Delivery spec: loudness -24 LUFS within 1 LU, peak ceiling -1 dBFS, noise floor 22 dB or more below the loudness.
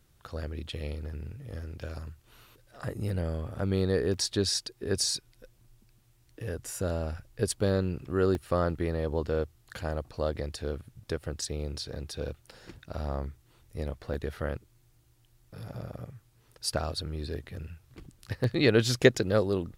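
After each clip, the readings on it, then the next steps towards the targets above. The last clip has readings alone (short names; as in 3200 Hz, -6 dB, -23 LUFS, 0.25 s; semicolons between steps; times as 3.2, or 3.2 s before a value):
dropouts 4; longest dropout 1.2 ms; loudness -31.5 LUFS; peak -6.5 dBFS; loudness target -24.0 LUFS
-> interpolate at 4.14/8.35/14.14/18.44, 1.2 ms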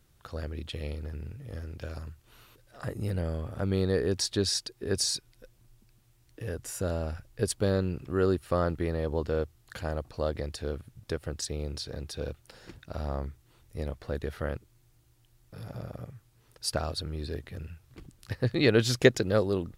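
dropouts 0; loudness -31.5 LUFS; peak -6.5 dBFS; loudness target -24.0 LUFS
-> gain +7.5 dB; limiter -1 dBFS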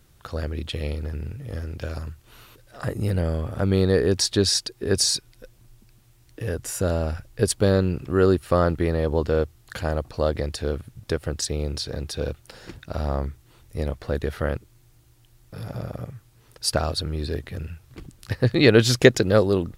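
loudness -24.0 LUFS; peak -1.0 dBFS; noise floor -57 dBFS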